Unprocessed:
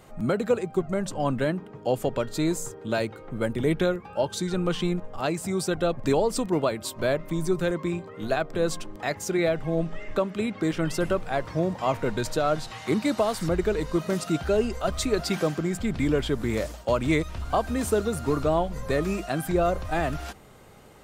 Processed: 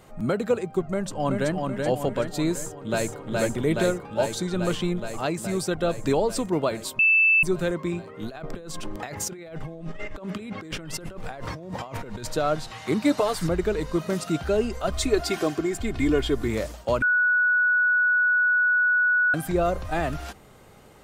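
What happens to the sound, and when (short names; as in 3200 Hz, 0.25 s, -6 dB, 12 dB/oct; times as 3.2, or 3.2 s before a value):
0.87–1.54 echo throw 0.38 s, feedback 55%, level -3.5 dB
2.51–3.21 echo throw 0.42 s, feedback 80%, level -1.5 dB
6.99–7.43 bleep 2640 Hz -15 dBFS
8.29–12.25 negative-ratio compressor -35 dBFS
13.03–13.47 comb 6.8 ms, depth 72%
14.93–16.48 comb 2.8 ms
17.02–19.34 bleep 1470 Hz -17.5 dBFS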